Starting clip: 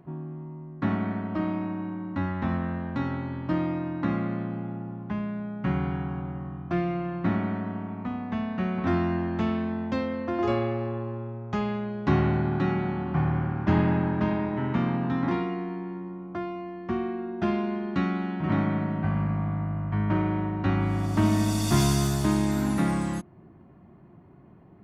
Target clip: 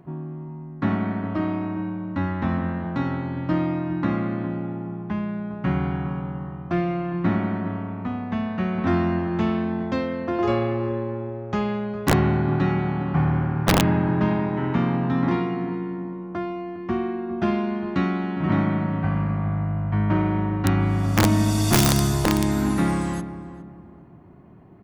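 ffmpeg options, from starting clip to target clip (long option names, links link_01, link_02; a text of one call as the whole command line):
ffmpeg -i in.wav -filter_complex "[0:a]asplit=2[link_01][link_02];[link_02]adelay=408,lowpass=frequency=1200:poles=1,volume=-12dB,asplit=2[link_03][link_04];[link_04]adelay=408,lowpass=frequency=1200:poles=1,volume=0.36,asplit=2[link_05][link_06];[link_06]adelay=408,lowpass=frequency=1200:poles=1,volume=0.36,asplit=2[link_07][link_08];[link_08]adelay=408,lowpass=frequency=1200:poles=1,volume=0.36[link_09];[link_03][link_05][link_07][link_09]amix=inputs=4:normalize=0[link_10];[link_01][link_10]amix=inputs=2:normalize=0,aeval=exprs='(mod(4.47*val(0)+1,2)-1)/4.47':channel_layout=same,volume=3.5dB" out.wav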